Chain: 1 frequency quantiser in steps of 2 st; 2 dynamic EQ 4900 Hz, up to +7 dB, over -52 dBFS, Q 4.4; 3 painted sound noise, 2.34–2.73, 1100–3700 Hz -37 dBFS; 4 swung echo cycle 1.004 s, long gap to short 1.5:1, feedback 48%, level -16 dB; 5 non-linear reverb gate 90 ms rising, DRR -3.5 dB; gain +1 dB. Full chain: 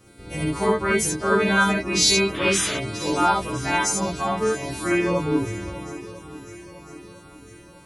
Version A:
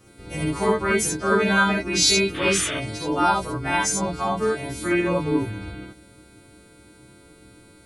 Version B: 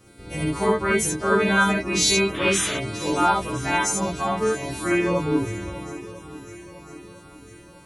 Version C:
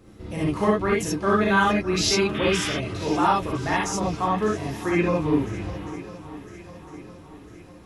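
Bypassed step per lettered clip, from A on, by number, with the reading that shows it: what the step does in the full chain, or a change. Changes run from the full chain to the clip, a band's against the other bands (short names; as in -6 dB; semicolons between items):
4, momentary loudness spread change -8 LU; 2, 4 kHz band -2.0 dB; 1, 8 kHz band -7.0 dB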